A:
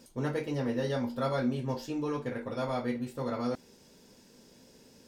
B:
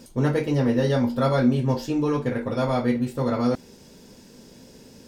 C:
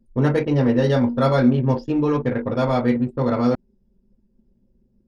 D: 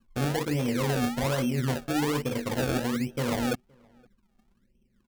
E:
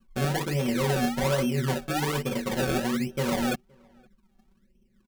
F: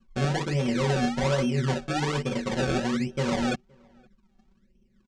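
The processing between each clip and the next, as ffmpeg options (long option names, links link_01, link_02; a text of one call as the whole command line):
ffmpeg -i in.wav -af "lowshelf=frequency=280:gain=5.5,volume=7.5dB" out.wav
ffmpeg -i in.wav -af "anlmdn=25.1,volume=3.5dB" out.wav
ffmpeg -i in.wav -filter_complex "[0:a]acrusher=samples=30:mix=1:aa=0.000001:lfo=1:lforange=30:lforate=1.2,alimiter=limit=-14.5dB:level=0:latency=1:release=46,asplit=2[link_01][link_02];[link_02]adelay=519,volume=-30dB,highshelf=frequency=4000:gain=-11.7[link_03];[link_01][link_03]amix=inputs=2:normalize=0,volume=-6dB" out.wav
ffmpeg -i in.wav -af "aecho=1:1:5.3:0.74" out.wav
ffmpeg -i in.wav -af "lowpass=frequency=7400:width=0.5412,lowpass=frequency=7400:width=1.3066,equalizer=frequency=83:width_type=o:width=1.8:gain=2.5" out.wav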